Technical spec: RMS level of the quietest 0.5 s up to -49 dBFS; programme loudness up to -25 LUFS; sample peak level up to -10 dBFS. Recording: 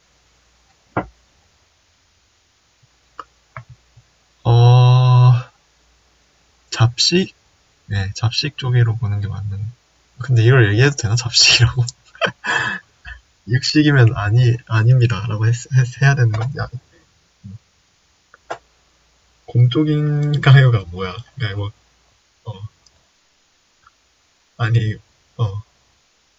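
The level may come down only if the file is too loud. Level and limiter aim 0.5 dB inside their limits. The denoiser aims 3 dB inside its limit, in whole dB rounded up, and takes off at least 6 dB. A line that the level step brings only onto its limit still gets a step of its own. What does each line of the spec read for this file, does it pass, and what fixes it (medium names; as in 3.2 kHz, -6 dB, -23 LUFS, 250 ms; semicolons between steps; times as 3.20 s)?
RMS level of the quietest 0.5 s -60 dBFS: pass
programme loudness -16.0 LUFS: fail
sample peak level -1.5 dBFS: fail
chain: trim -9.5 dB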